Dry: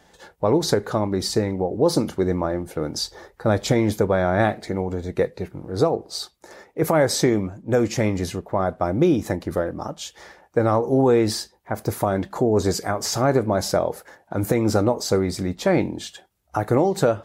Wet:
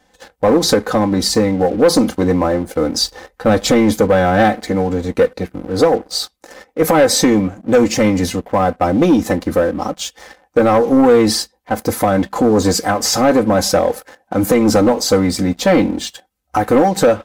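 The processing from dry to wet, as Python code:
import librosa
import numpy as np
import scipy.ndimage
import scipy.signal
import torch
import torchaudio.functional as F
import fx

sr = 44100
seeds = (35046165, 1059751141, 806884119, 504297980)

y = x + 0.78 * np.pad(x, (int(3.9 * sr / 1000.0), 0))[:len(x)]
y = fx.leveller(y, sr, passes=2)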